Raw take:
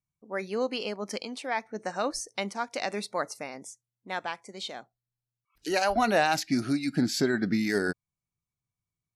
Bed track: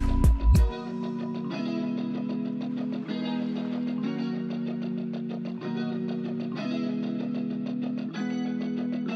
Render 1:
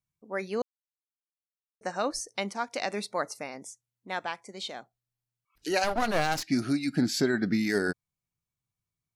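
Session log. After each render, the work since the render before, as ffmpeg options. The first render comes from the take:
-filter_complex "[0:a]asettb=1/sr,asplit=3[s0][s1][s2];[s0]atrim=end=5.844[s3];[s1]atrim=start=5.84:end=6.48,asetpts=PTS-STARTPTS,afade=t=in:d=0.004:c=qsin,afade=t=out:st=0.636:d=0.004:c=qsin,aeval=exprs='clip(val(0),-1,0.0168)':c=same[s4];[s2]atrim=start=6.476[s5];[s3][s4]acrossfade=d=0.004:c1=hsin:c2=qsin[s6];[s6][s5]acrossfade=d=0.004:c1=qsin:c2=hsin,asplit=3[s7][s8][s9];[s7]atrim=end=0.62,asetpts=PTS-STARTPTS,afade=t=out:st=0.616:d=0.004:c=hsin[s10];[s8]atrim=start=0.62:end=1.81,asetpts=PTS-STARTPTS,volume=0[s11];[s9]atrim=start=1.81,asetpts=PTS-STARTPTS,afade=t=in:d=0.004:c=hsin[s12];[s10][s11][s12]concat=n=3:v=0:a=1"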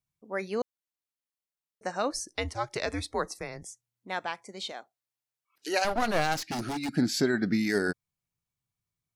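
-filter_complex "[0:a]asettb=1/sr,asplit=3[s0][s1][s2];[s0]atrim=end=2.204[s3];[s1]atrim=start=2.2:end=3.68,asetpts=PTS-STARTPTS,afade=t=in:d=0.004:c=qsin,afade=t=out:st=1.476:d=0.004:c=qsin,afreqshift=-120[s4];[s2]atrim=start=3.676[s5];[s3][s4]acrossfade=d=0.004:c1=hsin:c2=qsin[s6];[s6][s5]acrossfade=d=0.004:c1=qsin:c2=hsin,asettb=1/sr,asplit=3[s7][s8][s9];[s7]atrim=end=4.724[s10];[s8]atrim=start=4.72:end=5.85,asetpts=PTS-STARTPTS,afade=t=in:d=0.004:c=qsin,afade=t=out:st=1.126:d=0.004:c=qsin,highpass=350[s11];[s9]atrim=start=5.846[s12];[s10][s11]acrossfade=d=0.004:c1=hsin:c2=qsin[s13];[s13][s12]acrossfade=d=0.004:c1=qsin:c2=hsin,asettb=1/sr,asplit=3[s14][s15][s16];[s14]atrim=end=6.364[s17];[s15]atrim=start=6.36:end=6.89,asetpts=PTS-STARTPTS,afade=t=in:d=0.004:c=qsin,afade=t=out:st=0.526:d=0.004:c=qsin,aeval=exprs='0.0447*(abs(mod(val(0)/0.0447+3,4)-2)-1)':c=same[s18];[s16]atrim=start=6.886[s19];[s17][s18]acrossfade=d=0.004:c1=hsin:c2=qsin[s20];[s20][s19]acrossfade=d=0.004:c1=qsin:c2=hsin"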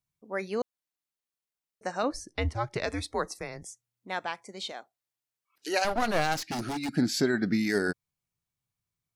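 -filter_complex "[0:a]asettb=1/sr,asplit=3[s0][s1][s2];[s0]atrim=end=2.034[s3];[s1]atrim=start=2.03:end=2.84,asetpts=PTS-STARTPTS,afade=t=in:d=0.004:c=qsin,afade=t=out:st=0.806:d=0.004:c=qsin,bass=f=250:g=8,treble=f=4000:g=-8[s4];[s2]atrim=start=2.836[s5];[s3][s4]acrossfade=d=0.004:c1=hsin:c2=qsin[s6];[s6][s5]acrossfade=d=0.004:c1=qsin:c2=hsin"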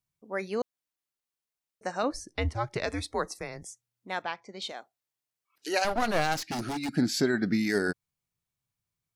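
-filter_complex "[0:a]asettb=1/sr,asplit=3[s0][s1][s2];[s0]atrim=end=4.224[s3];[s1]atrim=start=4.22:end=4.62,asetpts=PTS-STARTPTS,afade=t=in:d=0.004:c=qsin,afade=t=out:st=0.396:d=0.004:c=qsin,lowpass=f=5300:w=0.5412,lowpass=f=5300:w=1.3066[s4];[s2]atrim=start=4.616[s5];[s3][s4]acrossfade=d=0.004:c1=hsin:c2=qsin[s6];[s6][s5]acrossfade=d=0.004:c1=qsin:c2=hsin"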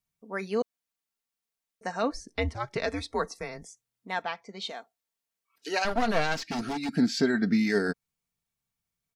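-filter_complex "[0:a]acrossover=split=6600[s0][s1];[s1]acompressor=threshold=0.00126:ratio=4:attack=1:release=60[s2];[s0][s2]amix=inputs=2:normalize=0,aecho=1:1:4.4:0.5"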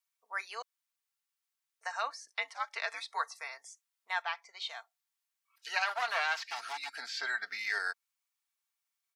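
-filter_complex "[0:a]acrossover=split=4000[s0][s1];[s1]acompressor=threshold=0.00501:ratio=4:attack=1:release=60[s2];[s0][s2]amix=inputs=2:normalize=0,highpass=f=890:w=0.5412,highpass=f=890:w=1.3066"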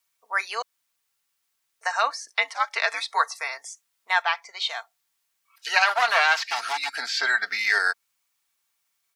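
-af "volume=3.98"

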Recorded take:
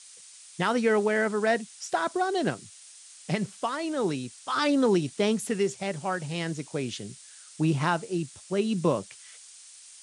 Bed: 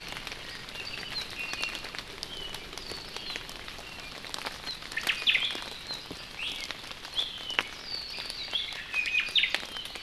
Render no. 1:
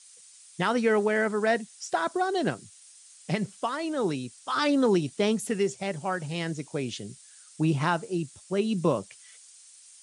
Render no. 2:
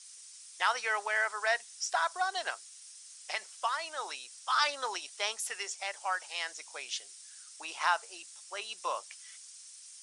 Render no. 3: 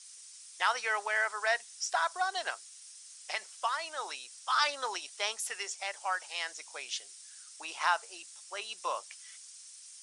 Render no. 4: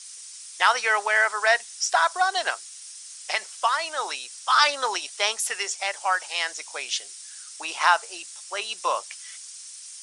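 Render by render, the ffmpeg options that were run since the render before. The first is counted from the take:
-af "afftdn=nr=6:nf=-50"
-af "highpass=f=800:w=0.5412,highpass=f=800:w=1.3066,equalizer=f=5500:t=o:w=0.33:g=5.5"
-af anull
-af "volume=2.99"

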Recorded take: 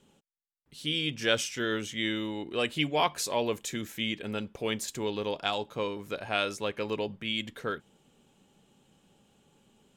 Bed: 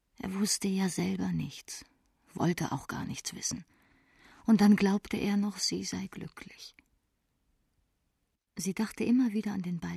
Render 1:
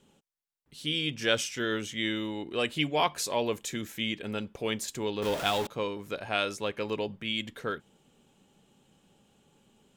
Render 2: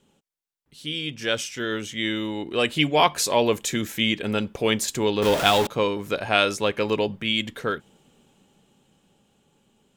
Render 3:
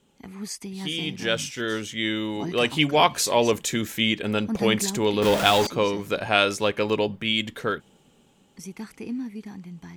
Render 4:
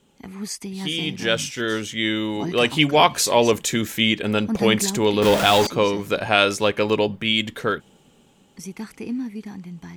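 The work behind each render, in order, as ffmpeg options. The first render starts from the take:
-filter_complex "[0:a]asettb=1/sr,asplit=3[s0][s1][s2];[s0]atrim=end=5.224[s3];[s1]atrim=start=5.22:end=5.67,asetpts=PTS-STARTPTS,afade=t=in:d=0.004:c=qsin,afade=t=out:st=0.446:d=0.004:c=qsin,aeval=exprs='val(0)+0.5*0.0299*sgn(val(0))':c=same[s4];[s2]atrim=start=5.666[s5];[s3][s4]acrossfade=d=0.004:c1=hsin:c2=qsin[s6];[s6][s5]acrossfade=d=0.004:c1=qsin:c2=hsin"
-af "dynaudnorm=f=280:g=17:m=3.55"
-filter_complex "[1:a]volume=0.562[s0];[0:a][s0]amix=inputs=2:normalize=0"
-af "volume=1.5,alimiter=limit=0.794:level=0:latency=1"

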